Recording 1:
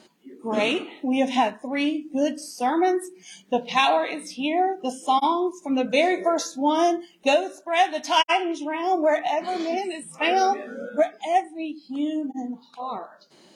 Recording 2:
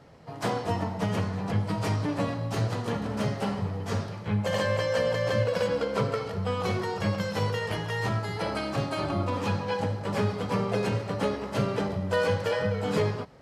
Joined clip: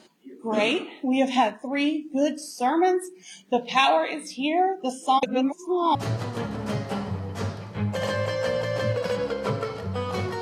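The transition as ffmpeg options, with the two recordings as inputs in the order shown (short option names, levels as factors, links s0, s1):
-filter_complex "[0:a]apad=whole_dur=10.41,atrim=end=10.41,asplit=2[s0][s1];[s0]atrim=end=5.232[s2];[s1]atrim=start=5.228:end=5.952,asetpts=PTS-STARTPTS,areverse[s3];[1:a]atrim=start=2.458:end=6.92[s4];[s2][s3]acrossfade=d=0.004:c1=hsin:c2=hsin[s5];[s5][s4]acrossfade=d=0.004:c1=hsin:c2=hsin"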